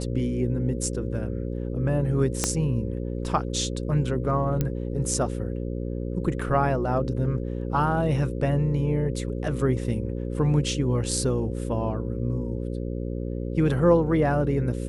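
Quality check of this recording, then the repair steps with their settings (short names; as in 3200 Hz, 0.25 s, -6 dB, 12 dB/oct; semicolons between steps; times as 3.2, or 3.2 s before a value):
buzz 60 Hz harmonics 9 -30 dBFS
2.44 pop -7 dBFS
4.61 pop -12 dBFS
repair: de-click; de-hum 60 Hz, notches 9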